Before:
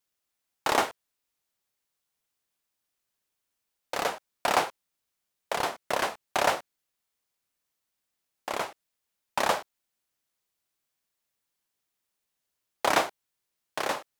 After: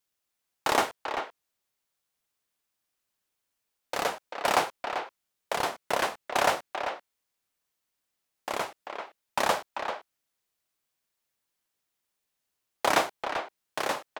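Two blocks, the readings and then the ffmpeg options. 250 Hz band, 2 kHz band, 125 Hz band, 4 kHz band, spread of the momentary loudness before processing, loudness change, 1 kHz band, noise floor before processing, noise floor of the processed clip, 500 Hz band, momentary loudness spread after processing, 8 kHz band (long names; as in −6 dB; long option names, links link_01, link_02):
+0.5 dB, +0.5 dB, 0.0 dB, +0.5 dB, 10 LU, −0.5 dB, +1.0 dB, −83 dBFS, −83 dBFS, +0.5 dB, 14 LU, 0.0 dB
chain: -filter_complex "[0:a]asplit=2[link_01][link_02];[link_02]adelay=390,highpass=300,lowpass=3400,asoftclip=type=hard:threshold=-18.5dB,volume=-6dB[link_03];[link_01][link_03]amix=inputs=2:normalize=0"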